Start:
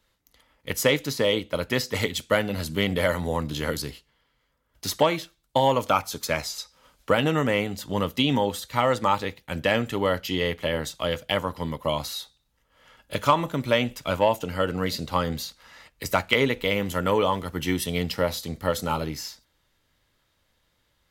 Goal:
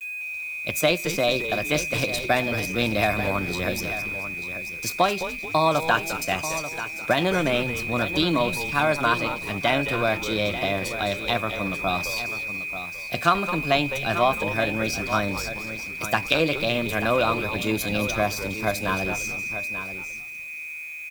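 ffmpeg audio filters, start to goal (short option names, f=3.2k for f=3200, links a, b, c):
-filter_complex "[0:a]aeval=exprs='val(0)+0.0316*sin(2*PI*2100*n/s)':c=same,asplit=2[a][b];[b]asplit=4[c][d][e][f];[c]adelay=213,afreqshift=-130,volume=-11dB[g];[d]adelay=426,afreqshift=-260,volume=-18.3dB[h];[e]adelay=639,afreqshift=-390,volume=-25.7dB[i];[f]adelay=852,afreqshift=-520,volume=-33dB[j];[g][h][i][j]amix=inputs=4:normalize=0[k];[a][k]amix=inputs=2:normalize=0,asetrate=52444,aresample=44100,atempo=0.840896,asplit=2[l][m];[m]aecho=0:1:888:0.266[n];[l][n]amix=inputs=2:normalize=0,agate=range=-20dB:threshold=-35dB:ratio=16:detection=peak,acrusher=bits=7:mix=0:aa=0.000001"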